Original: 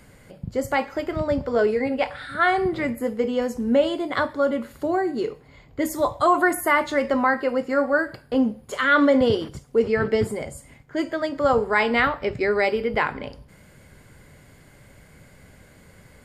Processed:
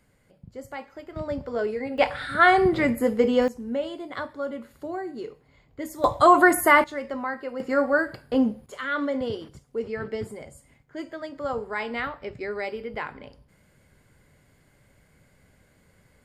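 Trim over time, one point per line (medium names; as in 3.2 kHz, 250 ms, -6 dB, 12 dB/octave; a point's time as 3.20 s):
-14 dB
from 1.16 s -7 dB
from 1.98 s +3 dB
from 3.48 s -9.5 dB
from 6.04 s +3 dB
from 6.84 s -10 dB
from 7.60 s -1 dB
from 8.66 s -10 dB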